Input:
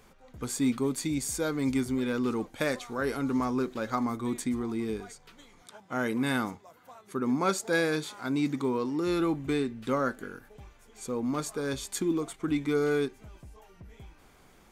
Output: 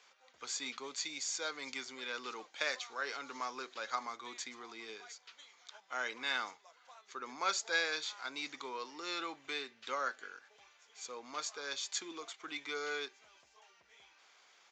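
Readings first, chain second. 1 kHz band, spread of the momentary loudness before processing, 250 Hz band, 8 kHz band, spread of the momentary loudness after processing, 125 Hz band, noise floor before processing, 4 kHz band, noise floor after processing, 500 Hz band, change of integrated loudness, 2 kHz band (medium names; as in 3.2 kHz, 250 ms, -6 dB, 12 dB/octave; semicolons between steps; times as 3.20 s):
-5.5 dB, 9 LU, -24.5 dB, -4.0 dB, 14 LU, under -30 dB, -58 dBFS, +1.5 dB, -68 dBFS, -14.5 dB, -9.5 dB, -2.5 dB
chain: tilt EQ +4.5 dB/octave; resampled via 16 kHz; three-band isolator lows -17 dB, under 410 Hz, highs -22 dB, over 6.2 kHz; trim -6 dB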